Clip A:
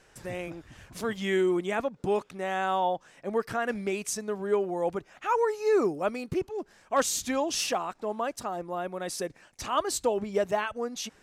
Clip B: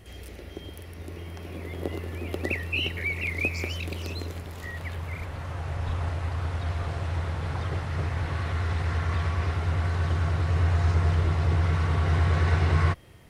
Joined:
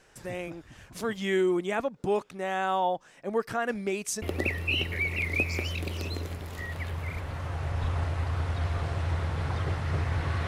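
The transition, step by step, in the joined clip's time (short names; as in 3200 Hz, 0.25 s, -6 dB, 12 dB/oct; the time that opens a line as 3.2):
clip A
4.22 switch to clip B from 2.27 s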